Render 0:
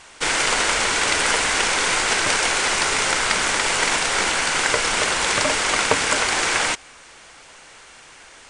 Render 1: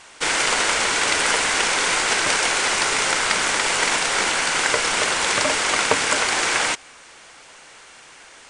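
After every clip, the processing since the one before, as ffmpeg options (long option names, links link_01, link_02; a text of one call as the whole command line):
ffmpeg -i in.wav -af "lowshelf=frequency=93:gain=-8.5" out.wav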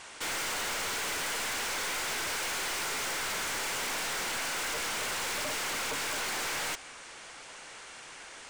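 ffmpeg -i in.wav -af "aeval=exprs='(tanh(35.5*val(0)+0.15)-tanh(0.15))/35.5':channel_layout=same,volume=-1.5dB" out.wav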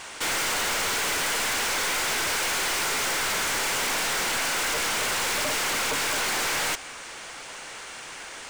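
ffmpeg -i in.wav -af "acrusher=bits=5:mode=log:mix=0:aa=0.000001,volume=7.5dB" out.wav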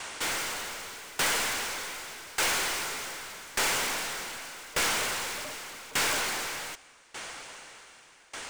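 ffmpeg -i in.wav -af "aeval=exprs='val(0)*pow(10,-22*if(lt(mod(0.84*n/s,1),2*abs(0.84)/1000),1-mod(0.84*n/s,1)/(2*abs(0.84)/1000),(mod(0.84*n/s,1)-2*abs(0.84)/1000)/(1-2*abs(0.84)/1000))/20)':channel_layout=same,volume=1.5dB" out.wav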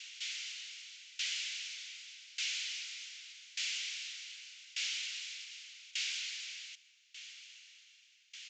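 ffmpeg -i in.wav -af "asuperpass=centerf=5400:order=8:qfactor=0.7,aresample=16000,aresample=44100,aemphasis=mode=reproduction:type=50fm,volume=-1.5dB" out.wav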